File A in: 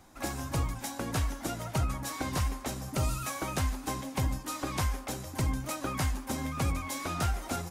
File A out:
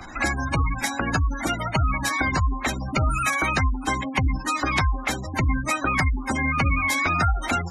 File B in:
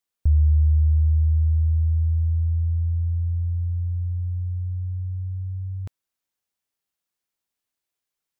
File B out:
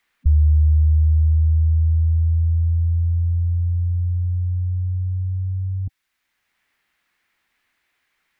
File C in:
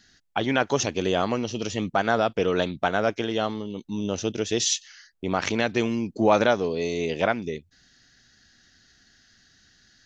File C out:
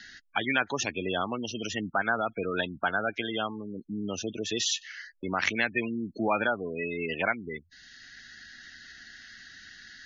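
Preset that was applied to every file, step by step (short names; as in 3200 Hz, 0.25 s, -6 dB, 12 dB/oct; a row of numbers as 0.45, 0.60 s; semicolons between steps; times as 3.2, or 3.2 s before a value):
spectral gate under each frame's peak -20 dB strong; graphic EQ 125/500/2000/4000 Hz -5/-5/+11/+4 dB; three-band squash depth 40%; normalise peaks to -9 dBFS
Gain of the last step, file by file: +10.0, +5.0, -5.0 dB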